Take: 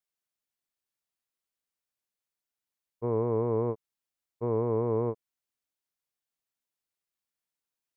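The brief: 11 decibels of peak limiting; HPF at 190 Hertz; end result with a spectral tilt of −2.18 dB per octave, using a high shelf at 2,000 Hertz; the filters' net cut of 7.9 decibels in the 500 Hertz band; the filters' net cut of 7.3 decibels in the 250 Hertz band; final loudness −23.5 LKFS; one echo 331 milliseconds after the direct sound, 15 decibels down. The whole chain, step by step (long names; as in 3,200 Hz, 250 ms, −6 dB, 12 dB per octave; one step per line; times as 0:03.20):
high-pass filter 190 Hz
parametric band 250 Hz −5.5 dB
parametric band 500 Hz −7 dB
high-shelf EQ 2,000 Hz −4 dB
brickwall limiter −35.5 dBFS
single-tap delay 331 ms −15 dB
level +24.5 dB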